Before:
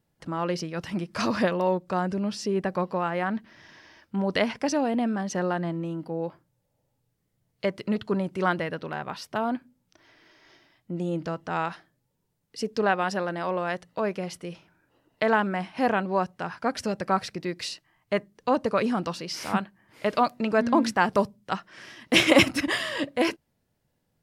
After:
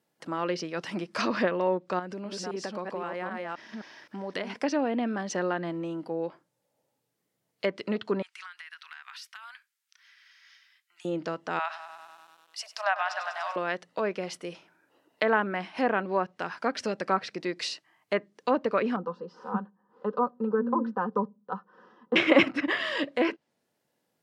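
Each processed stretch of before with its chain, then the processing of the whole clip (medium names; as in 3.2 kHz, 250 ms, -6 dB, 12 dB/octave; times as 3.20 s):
1.99–4.59 s: chunks repeated in reverse 261 ms, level -3 dB + compression 3:1, threshold -32 dBFS
8.22–11.05 s: inverse Chebyshev high-pass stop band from 550 Hz, stop band 50 dB + compression 16:1, threshold -41 dBFS
11.59–13.56 s: Chebyshev high-pass 600 Hz, order 8 + bit-crushed delay 98 ms, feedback 80%, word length 9-bit, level -13 dB
18.96–22.16 s: low-pass 1 kHz + static phaser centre 440 Hz, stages 8 + comb 4 ms, depth 55%
whole clip: high-pass 280 Hz 12 dB/octave; dynamic bell 780 Hz, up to -5 dB, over -36 dBFS, Q 1.3; low-pass that closes with the level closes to 2.1 kHz, closed at -23 dBFS; trim +1.5 dB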